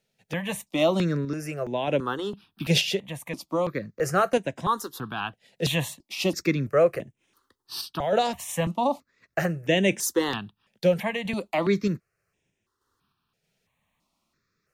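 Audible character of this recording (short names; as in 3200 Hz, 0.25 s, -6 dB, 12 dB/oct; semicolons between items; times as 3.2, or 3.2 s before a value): random-step tremolo 3.2 Hz; notches that jump at a steady rate 3 Hz 300–4400 Hz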